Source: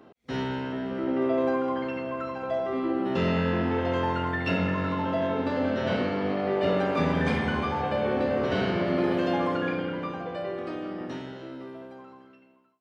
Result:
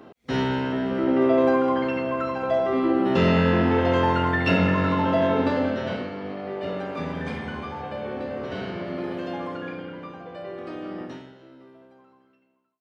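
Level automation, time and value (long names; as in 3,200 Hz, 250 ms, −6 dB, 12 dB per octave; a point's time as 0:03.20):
0:05.45 +6 dB
0:06.10 −5.5 dB
0:10.23 −5.5 dB
0:10.99 +1.5 dB
0:11.36 −9 dB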